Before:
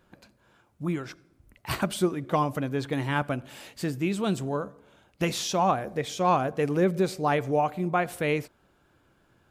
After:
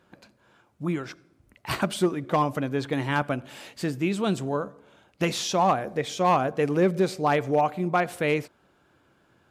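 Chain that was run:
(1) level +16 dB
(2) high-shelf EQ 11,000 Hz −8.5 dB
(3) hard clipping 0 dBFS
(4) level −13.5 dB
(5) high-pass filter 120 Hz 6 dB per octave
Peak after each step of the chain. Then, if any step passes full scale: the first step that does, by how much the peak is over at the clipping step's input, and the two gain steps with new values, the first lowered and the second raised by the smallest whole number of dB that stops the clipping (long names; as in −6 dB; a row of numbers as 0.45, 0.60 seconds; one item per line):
+5.0, +5.0, 0.0, −13.5, −11.0 dBFS
step 1, 5.0 dB
step 1 +11 dB, step 4 −8.5 dB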